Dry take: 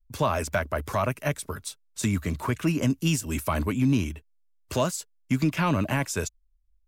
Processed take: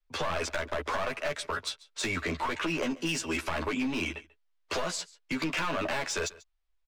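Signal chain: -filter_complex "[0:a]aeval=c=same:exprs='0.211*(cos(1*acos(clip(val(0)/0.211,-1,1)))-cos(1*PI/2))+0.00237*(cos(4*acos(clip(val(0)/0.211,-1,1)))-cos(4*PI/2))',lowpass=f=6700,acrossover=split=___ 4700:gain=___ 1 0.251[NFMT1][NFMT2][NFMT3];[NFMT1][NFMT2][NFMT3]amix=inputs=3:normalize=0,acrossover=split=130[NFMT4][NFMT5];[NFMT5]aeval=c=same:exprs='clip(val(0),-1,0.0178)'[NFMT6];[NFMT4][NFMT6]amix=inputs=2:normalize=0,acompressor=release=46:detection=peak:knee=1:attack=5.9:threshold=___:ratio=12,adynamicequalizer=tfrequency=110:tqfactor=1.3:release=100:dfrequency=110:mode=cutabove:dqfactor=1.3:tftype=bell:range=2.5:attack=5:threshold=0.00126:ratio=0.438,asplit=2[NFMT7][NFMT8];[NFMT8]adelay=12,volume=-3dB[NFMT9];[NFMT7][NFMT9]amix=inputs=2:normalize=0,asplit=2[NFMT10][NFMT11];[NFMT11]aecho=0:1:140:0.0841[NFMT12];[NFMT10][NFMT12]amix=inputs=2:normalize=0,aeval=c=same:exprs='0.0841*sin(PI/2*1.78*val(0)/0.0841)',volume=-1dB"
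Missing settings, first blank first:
380, 0.1, -37dB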